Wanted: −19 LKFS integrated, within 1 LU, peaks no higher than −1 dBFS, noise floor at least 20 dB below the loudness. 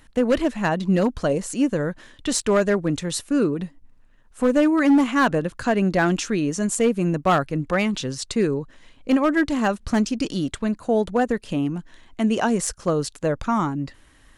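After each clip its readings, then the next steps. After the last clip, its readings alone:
share of clipped samples 1.0%; peaks flattened at −12.0 dBFS; integrated loudness −22.5 LKFS; sample peak −12.0 dBFS; target loudness −19.0 LKFS
→ clipped peaks rebuilt −12 dBFS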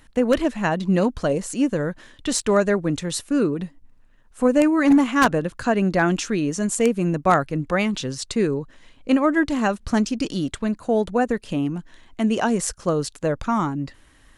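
share of clipped samples 0.0%; integrated loudness −22.0 LKFS; sample peak −3.0 dBFS; target loudness −19.0 LKFS
→ level +3 dB
brickwall limiter −1 dBFS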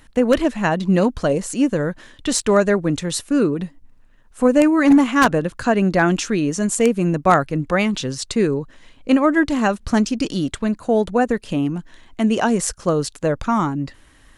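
integrated loudness −19.0 LKFS; sample peak −1.0 dBFS; background noise floor −50 dBFS

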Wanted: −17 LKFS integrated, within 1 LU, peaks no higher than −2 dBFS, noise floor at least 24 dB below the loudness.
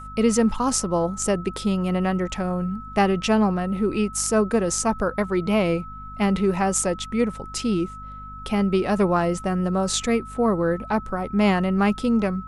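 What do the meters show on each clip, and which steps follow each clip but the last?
mains hum 50 Hz; hum harmonics up to 250 Hz; level of the hum −39 dBFS; interfering tone 1,300 Hz; level of the tone −37 dBFS; integrated loudness −23.0 LKFS; sample peak −5.0 dBFS; target loudness −17.0 LKFS
→ hum removal 50 Hz, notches 5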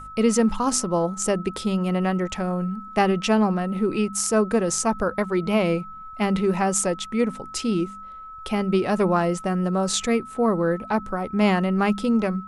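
mains hum none found; interfering tone 1,300 Hz; level of the tone −37 dBFS
→ notch filter 1,300 Hz, Q 30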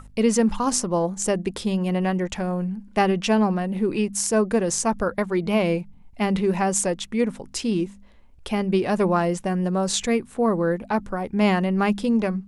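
interfering tone none found; integrated loudness −23.0 LKFS; sample peak −4.5 dBFS; target loudness −17.0 LKFS
→ level +6 dB
brickwall limiter −2 dBFS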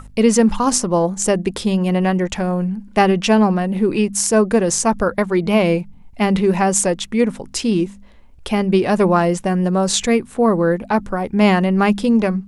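integrated loudness −17.0 LKFS; sample peak −2.0 dBFS; background noise floor −42 dBFS

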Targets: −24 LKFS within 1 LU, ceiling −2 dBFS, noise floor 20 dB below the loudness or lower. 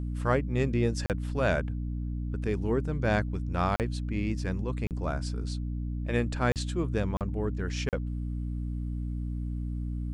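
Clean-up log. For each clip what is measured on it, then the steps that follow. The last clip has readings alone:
number of dropouts 6; longest dropout 38 ms; mains hum 60 Hz; hum harmonics up to 300 Hz; level of the hum −30 dBFS; integrated loudness −31.0 LKFS; sample peak −12.5 dBFS; target loudness −24.0 LKFS
→ repair the gap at 0:01.06/0:03.76/0:04.87/0:06.52/0:07.17/0:07.89, 38 ms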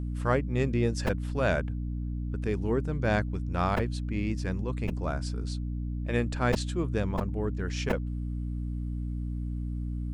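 number of dropouts 0; mains hum 60 Hz; hum harmonics up to 300 Hz; level of the hum −30 dBFS
→ hum removal 60 Hz, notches 5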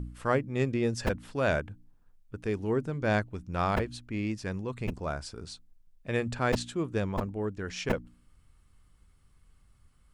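mains hum none found; integrated loudness −31.5 LKFS; sample peak −13.0 dBFS; target loudness −24.0 LKFS
→ level +7.5 dB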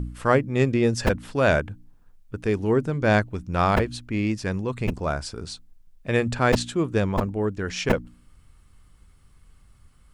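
integrated loudness −24.0 LKFS; sample peak −5.5 dBFS; background noise floor −56 dBFS

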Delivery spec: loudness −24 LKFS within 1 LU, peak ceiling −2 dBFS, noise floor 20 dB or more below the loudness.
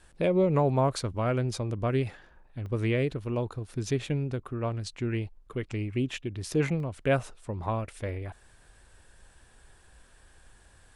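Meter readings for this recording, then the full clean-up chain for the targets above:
number of dropouts 2; longest dropout 1.2 ms; integrated loudness −30.0 LKFS; sample peak −13.0 dBFS; target loudness −24.0 LKFS
→ repair the gap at 0:02.66/0:06.80, 1.2 ms
level +6 dB

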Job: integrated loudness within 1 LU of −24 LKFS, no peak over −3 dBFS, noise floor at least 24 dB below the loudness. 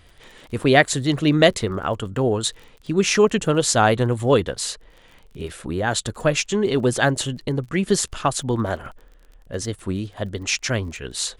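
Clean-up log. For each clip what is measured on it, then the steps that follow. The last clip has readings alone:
crackle rate 26 per second; integrated loudness −21.0 LKFS; sample peak −1.5 dBFS; target loudness −24.0 LKFS
→ click removal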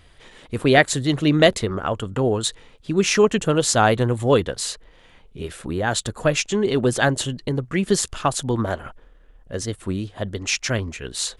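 crackle rate 0 per second; integrated loudness −21.0 LKFS; sample peak −1.5 dBFS; target loudness −24.0 LKFS
→ level −3 dB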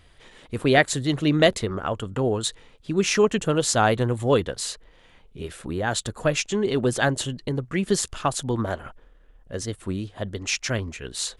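integrated loudness −24.0 LKFS; sample peak −4.5 dBFS; background noise floor −54 dBFS

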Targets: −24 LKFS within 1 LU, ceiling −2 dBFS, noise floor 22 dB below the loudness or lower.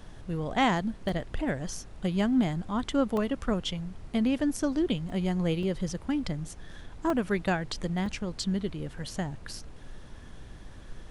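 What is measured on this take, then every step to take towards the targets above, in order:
number of dropouts 6; longest dropout 1.8 ms; background noise floor −46 dBFS; target noise floor −52 dBFS; integrated loudness −30.0 LKFS; sample peak −14.0 dBFS; target loudness −24.0 LKFS
→ repair the gap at 0:01.09/0:03.17/0:05.10/0:05.63/0:07.10/0:08.06, 1.8 ms
noise reduction from a noise print 6 dB
level +6 dB

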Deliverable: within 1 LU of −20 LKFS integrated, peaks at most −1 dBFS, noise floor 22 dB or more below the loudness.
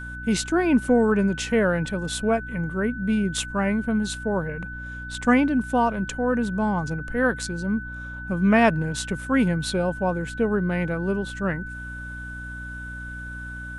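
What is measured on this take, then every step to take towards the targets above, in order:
mains hum 60 Hz; hum harmonics up to 300 Hz; level of the hum −36 dBFS; interfering tone 1,500 Hz; level of the tone −35 dBFS; integrated loudness −24.0 LKFS; sample peak −5.5 dBFS; target loudness −20.0 LKFS
→ mains-hum notches 60/120/180/240/300 Hz
notch filter 1,500 Hz, Q 30
level +4 dB

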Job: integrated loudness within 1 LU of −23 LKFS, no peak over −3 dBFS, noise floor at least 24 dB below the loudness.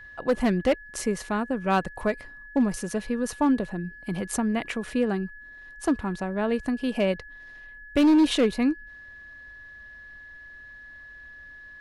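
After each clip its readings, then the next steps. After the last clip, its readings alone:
share of clipped samples 1.0%; peaks flattened at −15.0 dBFS; interfering tone 1,700 Hz; level of the tone −43 dBFS; integrated loudness −26.0 LKFS; sample peak −15.0 dBFS; target loudness −23.0 LKFS
→ clipped peaks rebuilt −15 dBFS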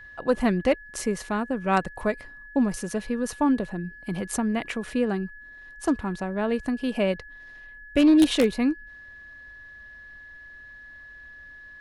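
share of clipped samples 0.0%; interfering tone 1,700 Hz; level of the tone −43 dBFS
→ notch filter 1,700 Hz, Q 30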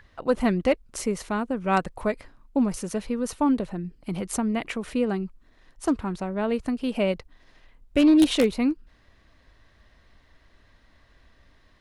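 interfering tone none found; integrated loudness −25.5 LKFS; sample peak −6.0 dBFS; target loudness −23.0 LKFS
→ level +2.5 dB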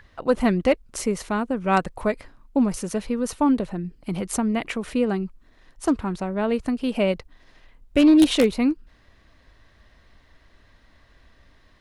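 integrated loudness −23.0 LKFS; sample peak −3.5 dBFS; background noise floor −57 dBFS

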